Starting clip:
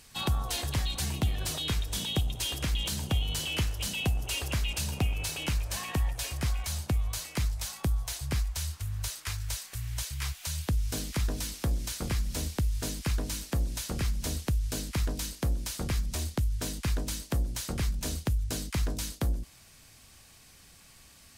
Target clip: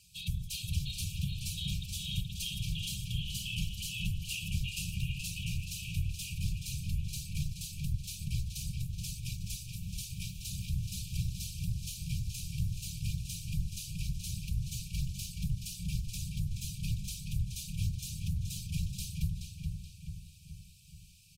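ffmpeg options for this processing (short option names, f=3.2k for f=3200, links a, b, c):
-filter_complex "[0:a]afftfilt=real='hypot(re,im)*cos(2*PI*random(0))':imag='hypot(re,im)*sin(2*PI*random(1))':win_size=512:overlap=0.75,asplit=2[a][b];[b]adelay=426,lowpass=f=4.4k:p=1,volume=-4dB,asplit=2[c][d];[d]adelay=426,lowpass=f=4.4k:p=1,volume=0.54,asplit=2[e][f];[f]adelay=426,lowpass=f=4.4k:p=1,volume=0.54,asplit=2[g][h];[h]adelay=426,lowpass=f=4.4k:p=1,volume=0.54,asplit=2[i][j];[j]adelay=426,lowpass=f=4.4k:p=1,volume=0.54,asplit=2[k][l];[l]adelay=426,lowpass=f=4.4k:p=1,volume=0.54,asplit=2[m][n];[n]adelay=426,lowpass=f=4.4k:p=1,volume=0.54[o];[a][c][e][g][i][k][m][o]amix=inputs=8:normalize=0,afftfilt=real='re*(1-between(b*sr/4096,200,2300))':imag='im*(1-between(b*sr/4096,200,2300))':win_size=4096:overlap=0.75"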